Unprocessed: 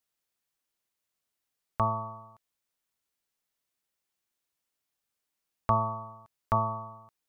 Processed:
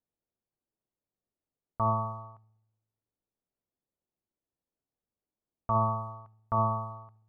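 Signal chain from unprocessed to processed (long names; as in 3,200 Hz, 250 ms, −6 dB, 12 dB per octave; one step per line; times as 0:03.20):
delay with a low-pass on its return 64 ms, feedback 64%, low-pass 1,000 Hz, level −19 dB
brickwall limiter −20.5 dBFS, peak gain reduction 9 dB
low-pass that shuts in the quiet parts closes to 550 Hz, open at −31.5 dBFS
level +3.5 dB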